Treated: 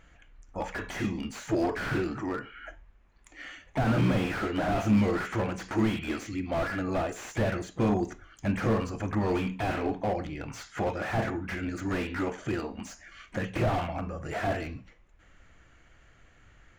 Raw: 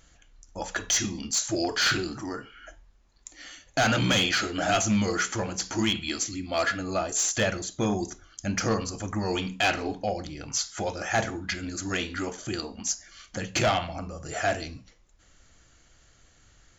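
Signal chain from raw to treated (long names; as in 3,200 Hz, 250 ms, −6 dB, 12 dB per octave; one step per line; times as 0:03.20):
pitch-shifted copies added +5 semitones −17 dB
high shelf with overshoot 3,300 Hz −11.5 dB, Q 1.5
slew-rate limiting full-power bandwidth 30 Hz
level +1.5 dB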